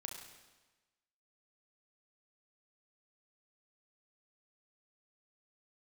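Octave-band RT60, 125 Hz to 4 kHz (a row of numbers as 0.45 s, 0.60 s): 1.2 s, 1.2 s, 1.2 s, 1.2 s, 1.2 s, 1.1 s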